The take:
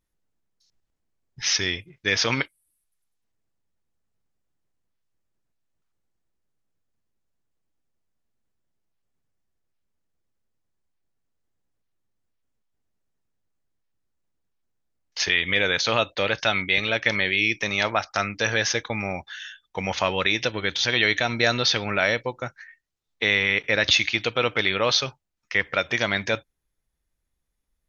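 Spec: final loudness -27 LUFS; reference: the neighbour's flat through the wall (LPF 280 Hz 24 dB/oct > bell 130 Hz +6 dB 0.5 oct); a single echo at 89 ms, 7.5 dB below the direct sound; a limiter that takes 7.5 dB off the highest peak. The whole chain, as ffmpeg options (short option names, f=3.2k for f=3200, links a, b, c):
-af "alimiter=limit=-13.5dB:level=0:latency=1,lowpass=f=280:w=0.5412,lowpass=f=280:w=1.3066,equalizer=f=130:t=o:w=0.5:g=6,aecho=1:1:89:0.422,volume=9.5dB"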